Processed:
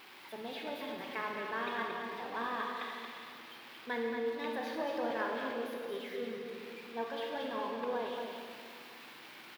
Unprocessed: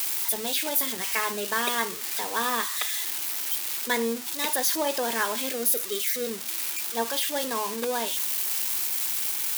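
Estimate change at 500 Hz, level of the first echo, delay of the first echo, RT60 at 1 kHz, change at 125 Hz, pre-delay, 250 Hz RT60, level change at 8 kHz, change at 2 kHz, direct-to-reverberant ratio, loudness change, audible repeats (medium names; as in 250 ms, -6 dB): -6.0 dB, -6.5 dB, 227 ms, 2.2 s, no reading, 25 ms, 2.8 s, -34.5 dB, -9.5 dB, -0.5 dB, -13.0 dB, 1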